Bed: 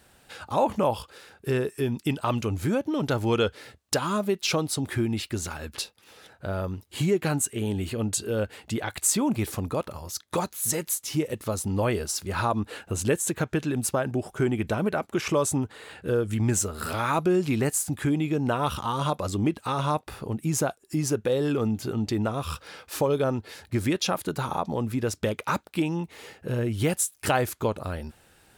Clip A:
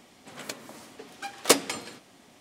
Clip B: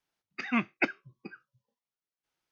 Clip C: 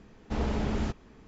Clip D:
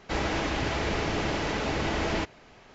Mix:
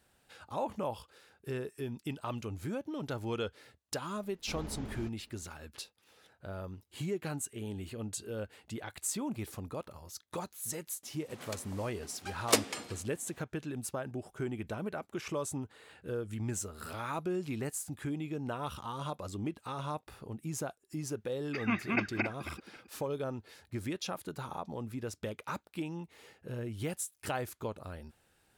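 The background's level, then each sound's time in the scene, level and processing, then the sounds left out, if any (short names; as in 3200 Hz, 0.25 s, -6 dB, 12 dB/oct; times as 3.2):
bed -12 dB
4.17 add C -13.5 dB
11.03 add A -6.5 dB
21.15 add B -4.5 dB + regenerating reverse delay 0.135 s, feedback 50%, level -2 dB
not used: D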